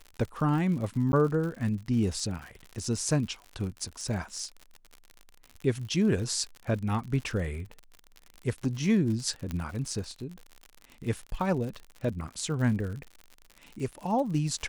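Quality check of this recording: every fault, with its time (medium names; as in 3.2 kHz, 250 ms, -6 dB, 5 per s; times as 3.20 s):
crackle 72 per s -36 dBFS
1.12–1.13 s: dropout 11 ms
9.51 s: pop -20 dBFS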